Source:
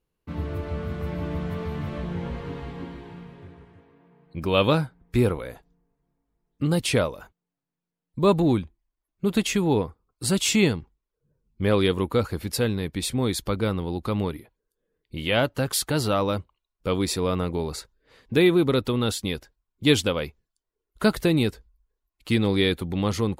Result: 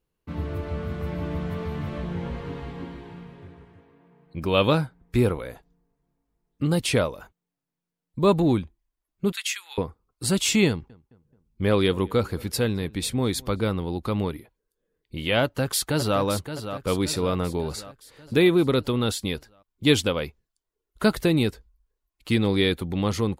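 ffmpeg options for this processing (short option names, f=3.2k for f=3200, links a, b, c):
-filter_complex "[0:a]asettb=1/sr,asplit=3[a][b][c];[a]atrim=end=9.324[d];[b]atrim=start=9.32:end=9.78,asetpts=PTS-STARTPTS,afade=t=in:d=0.004:c=qsin,afade=t=out:st=0.456:d=0.004:c=qsin,highpass=f=1.5k:w=0.5412,highpass=f=1.5k:w=1.3066[e];[c]atrim=start=9.776[f];[d][e]acrossfade=d=0.004:c1=hsin:c2=qsin[g];[g][f]acrossfade=d=0.004:c1=qsin:c2=hsin,asettb=1/sr,asplit=3[h][i][j];[h]atrim=end=10.684[k];[i]atrim=start=10.68:end=13.61,asetpts=PTS-STARTPTS,afade=t=in:d=0.004:c=qsin,afade=t=out:st=2.926:d=0.004:c=qsin,asplit=2[l][m];[m]adelay=215,lowpass=f=2k:p=1,volume=-23.5dB,asplit=2[n][o];[o]adelay=215,lowpass=f=2k:p=1,volume=0.49,asplit=2[p][q];[q]adelay=215,lowpass=f=2k:p=1,volume=0.49[r];[l][n][p][r]amix=inputs=4:normalize=0,atrim=end_sample=129213[s];[j]atrim=start=13.606[t];[k][s]acrossfade=d=0.004:c1=hsin:c2=qsin[u];[u][t]acrossfade=d=0.004:c1=qsin:c2=hsin,asplit=2[v][w];[w]afade=t=in:st=15.42:d=0.01,afade=t=out:st=16.2:d=0.01,aecho=0:1:570|1140|1710|2280|2850|3420:0.334965|0.184231|0.101327|0.0557299|0.0306514|0.0168583[x];[v][x]amix=inputs=2:normalize=0"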